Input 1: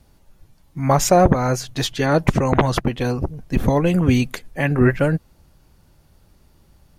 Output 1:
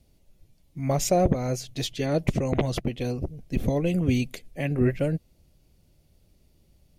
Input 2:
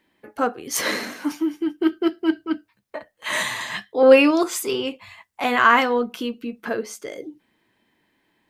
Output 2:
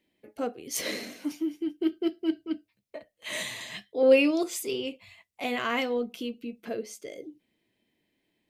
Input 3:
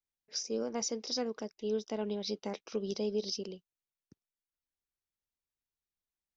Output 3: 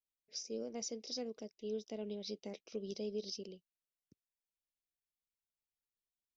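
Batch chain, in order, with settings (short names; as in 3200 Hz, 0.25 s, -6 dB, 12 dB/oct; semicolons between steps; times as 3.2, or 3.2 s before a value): band shelf 1200 Hz -10.5 dB 1.3 oct; gain -7 dB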